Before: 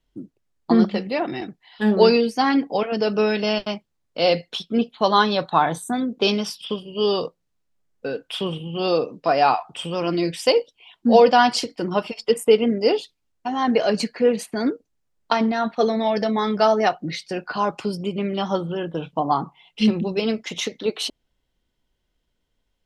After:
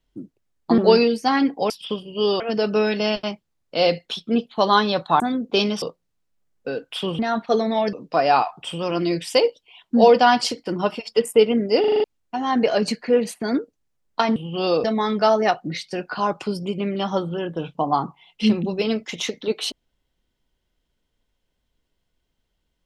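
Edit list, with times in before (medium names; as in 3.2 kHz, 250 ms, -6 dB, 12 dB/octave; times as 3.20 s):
0.78–1.91 s: delete
5.63–5.88 s: delete
6.50–7.20 s: move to 2.83 s
8.57–9.05 s: swap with 15.48–16.22 s
12.92 s: stutter in place 0.04 s, 6 plays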